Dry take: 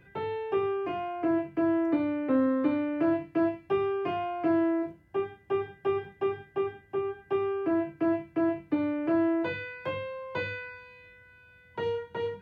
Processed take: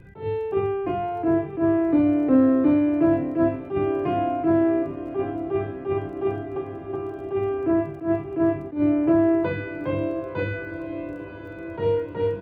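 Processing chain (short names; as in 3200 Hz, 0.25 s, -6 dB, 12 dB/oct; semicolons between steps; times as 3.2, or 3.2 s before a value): tilt -3 dB/oct; 6.46–7.19 compressor 2.5:1, threshold -33 dBFS, peak gain reduction 8 dB; crackle 15/s -49 dBFS; doubler 47 ms -11 dB; diffused feedback echo 1.007 s, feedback 65%, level -13 dB; attack slew limiter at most 170 dB/s; gain +3.5 dB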